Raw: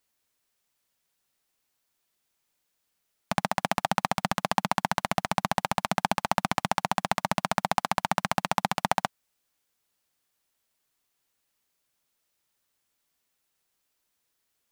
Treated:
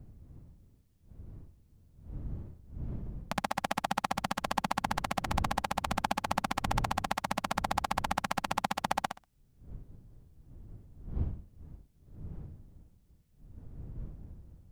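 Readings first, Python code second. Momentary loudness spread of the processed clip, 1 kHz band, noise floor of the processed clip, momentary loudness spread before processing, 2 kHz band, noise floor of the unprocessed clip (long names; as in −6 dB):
19 LU, −5.0 dB, −65 dBFS, 1 LU, −5.5 dB, −78 dBFS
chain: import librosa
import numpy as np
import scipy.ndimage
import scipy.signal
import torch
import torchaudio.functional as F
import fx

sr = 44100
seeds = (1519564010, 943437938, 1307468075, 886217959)

y = fx.dmg_wind(x, sr, seeds[0], corner_hz=100.0, level_db=-38.0)
y = fx.echo_feedback(y, sr, ms=63, feedback_pct=20, wet_db=-7.0)
y = y * librosa.db_to_amplitude(-6.0)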